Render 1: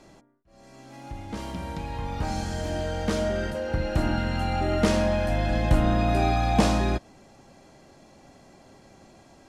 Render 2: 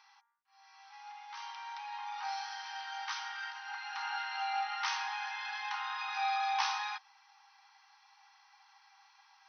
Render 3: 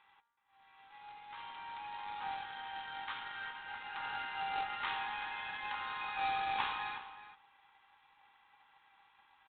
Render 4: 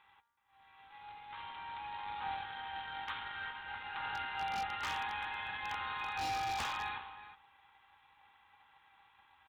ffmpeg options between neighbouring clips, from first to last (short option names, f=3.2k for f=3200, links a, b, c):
-af "afftfilt=real='re*between(b*sr/4096,770,6200)':imag='im*between(b*sr/4096,770,6200)':win_size=4096:overlap=0.75,volume=-3.5dB"
-filter_complex "[0:a]aresample=8000,acrusher=bits=2:mode=log:mix=0:aa=0.000001,aresample=44100,asplit=2[a][b];[b]adelay=373.2,volume=-12dB,highshelf=f=4k:g=-8.4[c];[a][c]amix=inputs=2:normalize=0,volume=-3dB"
-af "aeval=exprs='0.0251*(abs(mod(val(0)/0.0251+3,4)-2)-1)':c=same,equalizer=f=76:w=1.2:g=10.5,volume=1dB"